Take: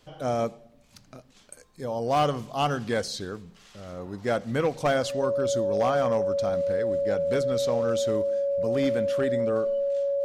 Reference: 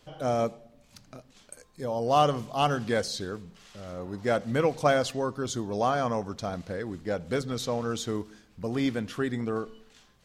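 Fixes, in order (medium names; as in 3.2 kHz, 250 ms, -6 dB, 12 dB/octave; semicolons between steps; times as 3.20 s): clip repair -17 dBFS; band-stop 560 Hz, Q 30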